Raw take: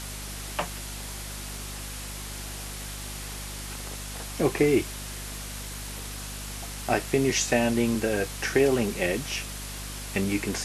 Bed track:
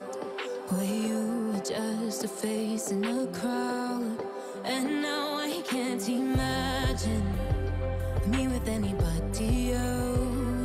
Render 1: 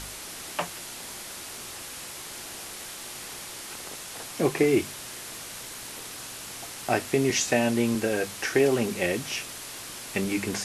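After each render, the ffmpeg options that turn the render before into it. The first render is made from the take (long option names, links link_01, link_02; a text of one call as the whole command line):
ffmpeg -i in.wav -af "bandreject=frequency=50:width_type=h:width=4,bandreject=frequency=100:width_type=h:width=4,bandreject=frequency=150:width_type=h:width=4,bandreject=frequency=200:width_type=h:width=4,bandreject=frequency=250:width_type=h:width=4" out.wav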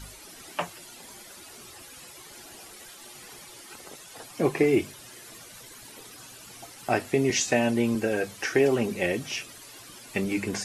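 ffmpeg -i in.wav -af "afftdn=noise_reduction=12:noise_floor=-40" out.wav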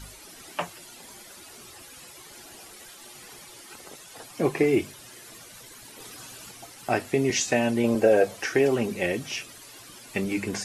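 ffmpeg -i in.wav -filter_complex "[0:a]asettb=1/sr,asplit=3[link_01][link_02][link_03];[link_01]atrim=end=7.844[link_04];[link_02]atrim=start=7.84:end=8.4,asetpts=PTS-STARTPTS,afade=type=in:duration=0.004:curve=qsin,afade=type=out:start_time=0.556:duration=0.004:curve=qsin,equalizer=frequency=600:width_type=o:width=1:gain=13[link_05];[link_03]atrim=start=8.396[link_06];[link_04][link_05]acrossfade=duration=0.004:curve1=hsin:curve2=qsin[link_07];[link_07][link_06]acrossfade=duration=0.004:curve1=qsin:curve2=hsin,asplit=3[link_08][link_09][link_10];[link_08]atrim=end=6.002[link_11];[link_09]atrim=start=5.998:end=6.512,asetpts=PTS-STARTPTS,volume=3dB[link_12];[link_10]atrim=start=6.508[link_13];[link_11][link_12]acrossfade=duration=0.004:curve1=hsin:curve2=hsin[link_14];[link_14][link_13]acrossfade=duration=0.004:curve1=hsin:curve2=hsin" out.wav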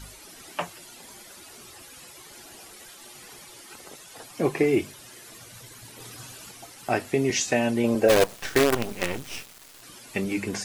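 ffmpeg -i in.wav -filter_complex "[0:a]asettb=1/sr,asplit=3[link_01][link_02][link_03];[link_01]atrim=end=5.414[link_04];[link_02]atrim=start=5.41:end=6.32,asetpts=PTS-STARTPTS,afade=type=in:duration=0.004:curve=qsin,afade=type=out:start_time=0.906:duration=0.004:curve=qsin,equalizer=frequency=110:width_type=o:width=0.77:gain=11[link_05];[link_03]atrim=start=6.316[link_06];[link_04][link_05]acrossfade=duration=0.004:curve1=hsin:curve2=qsin[link_07];[link_07][link_06]acrossfade=duration=0.004:curve1=qsin:curve2=hsin,asplit=3[link_08][link_09][link_10];[link_08]afade=type=out:start_time=8.08:duration=0.02[link_11];[link_09]acrusher=bits=4:dc=4:mix=0:aa=0.000001,afade=type=in:start_time=8.08:duration=0.02,afade=type=out:start_time=9.81:duration=0.02[link_12];[link_10]afade=type=in:start_time=9.81:duration=0.02[link_13];[link_11][link_12][link_13]amix=inputs=3:normalize=0" out.wav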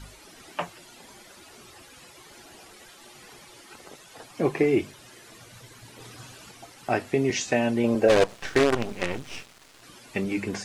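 ffmpeg -i in.wav -filter_complex "[0:a]acrossover=split=9900[link_01][link_02];[link_02]acompressor=threshold=-55dB:ratio=4:attack=1:release=60[link_03];[link_01][link_03]amix=inputs=2:normalize=0,highshelf=frequency=5200:gain=-7" out.wav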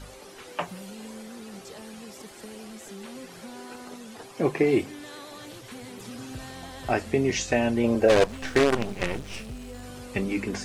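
ffmpeg -i in.wav -i bed.wav -filter_complex "[1:a]volume=-12.5dB[link_01];[0:a][link_01]amix=inputs=2:normalize=0" out.wav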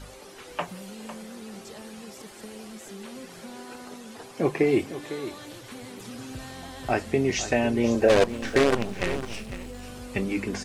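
ffmpeg -i in.wav -af "aecho=1:1:503:0.237" out.wav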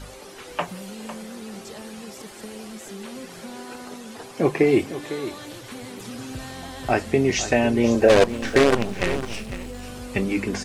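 ffmpeg -i in.wav -af "volume=4dB" out.wav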